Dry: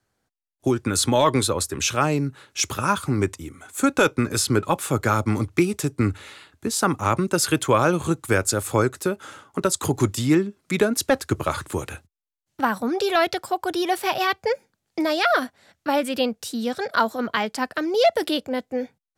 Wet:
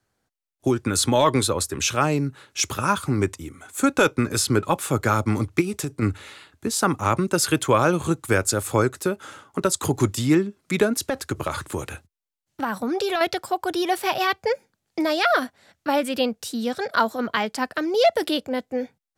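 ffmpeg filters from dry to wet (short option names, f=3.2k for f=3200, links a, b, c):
-filter_complex "[0:a]asplit=3[a][b][c];[a]afade=t=out:st=5.6:d=0.02[d];[b]acompressor=threshold=-22dB:ratio=6:attack=3.2:release=140:knee=1:detection=peak,afade=t=in:st=5.6:d=0.02,afade=t=out:st=6.01:d=0.02[e];[c]afade=t=in:st=6.01:d=0.02[f];[d][e][f]amix=inputs=3:normalize=0,asettb=1/sr,asplit=3[g][h][i];[g]atrim=end=10.974[j];[h]atrim=start=10.97:end=13.21,asetpts=PTS-STARTPTS,afade=t=in:d=0.004:c=qsin,afade=t=out:st=2.236:d=0.004:c=qsin,acompressor=threshold=-20dB:ratio=4:attack=3.2:release=140:knee=1:detection=peak[k];[i]atrim=start=13.206[l];[j][k]acrossfade=d=0.004:c1=hsin:c2=qsin[m];[m][l]acrossfade=d=0.004:c1=qsin:c2=hsin"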